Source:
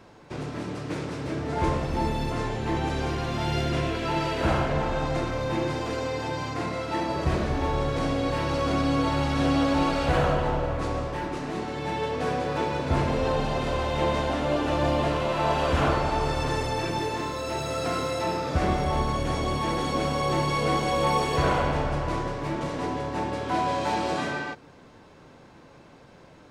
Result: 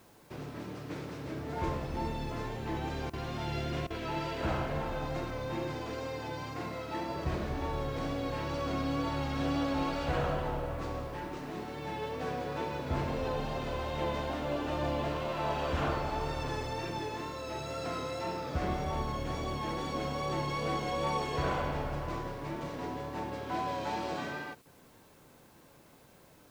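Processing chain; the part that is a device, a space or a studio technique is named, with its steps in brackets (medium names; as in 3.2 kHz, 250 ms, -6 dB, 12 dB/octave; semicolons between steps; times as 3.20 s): worn cassette (low-pass 7.7 kHz 12 dB/octave; wow and flutter 28 cents; level dips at 3.10/3.87/24.62 s, 32 ms -16 dB; white noise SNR 31 dB); trim -8.5 dB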